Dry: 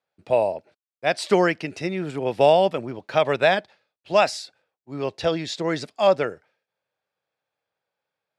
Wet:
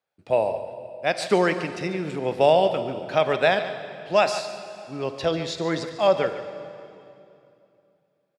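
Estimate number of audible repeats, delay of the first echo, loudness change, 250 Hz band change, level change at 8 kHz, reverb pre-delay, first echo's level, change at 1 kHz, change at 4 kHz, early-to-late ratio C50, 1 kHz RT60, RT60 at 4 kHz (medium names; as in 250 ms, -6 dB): 1, 145 ms, -1.0 dB, -1.0 dB, -1.0 dB, 15 ms, -13.5 dB, -1.0 dB, -1.0 dB, 8.5 dB, 2.5 s, 2.3 s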